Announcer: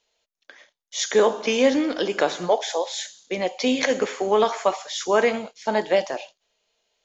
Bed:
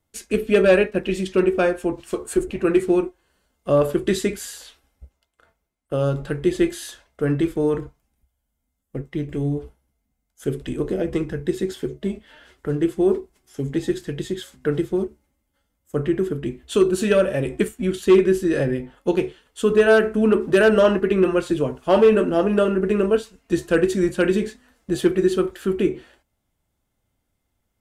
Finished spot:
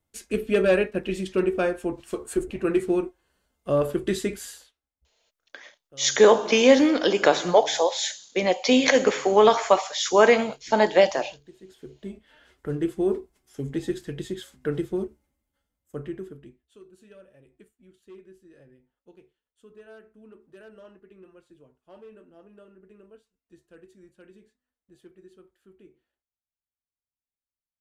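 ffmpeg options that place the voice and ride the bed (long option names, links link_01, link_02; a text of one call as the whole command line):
ffmpeg -i stem1.wav -i stem2.wav -filter_complex "[0:a]adelay=5050,volume=3dB[link_01];[1:a]volume=16dB,afade=type=out:start_time=4.5:duration=0.22:silence=0.0841395,afade=type=in:start_time=11.6:duration=1.09:silence=0.0891251,afade=type=out:start_time=15.23:duration=1.43:silence=0.0421697[link_02];[link_01][link_02]amix=inputs=2:normalize=0" out.wav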